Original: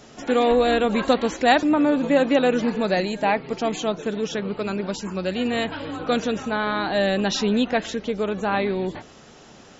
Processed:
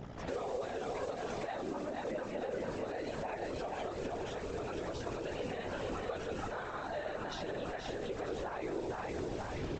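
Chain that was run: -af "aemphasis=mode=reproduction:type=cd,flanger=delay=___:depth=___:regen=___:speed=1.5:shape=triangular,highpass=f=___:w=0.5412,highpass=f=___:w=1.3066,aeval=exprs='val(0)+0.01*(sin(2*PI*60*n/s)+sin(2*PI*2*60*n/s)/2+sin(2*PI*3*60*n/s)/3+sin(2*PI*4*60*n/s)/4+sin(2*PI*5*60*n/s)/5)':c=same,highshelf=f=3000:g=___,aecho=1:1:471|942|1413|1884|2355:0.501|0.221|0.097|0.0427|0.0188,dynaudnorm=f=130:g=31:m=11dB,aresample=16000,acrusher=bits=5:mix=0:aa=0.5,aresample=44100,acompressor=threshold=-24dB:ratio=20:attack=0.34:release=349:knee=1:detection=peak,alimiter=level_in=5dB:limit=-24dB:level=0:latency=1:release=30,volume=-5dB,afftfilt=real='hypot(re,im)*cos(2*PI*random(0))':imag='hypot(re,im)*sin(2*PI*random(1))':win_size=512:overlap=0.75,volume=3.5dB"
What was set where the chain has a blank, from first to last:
8.8, 5.8, 44, 320, 320, -9.5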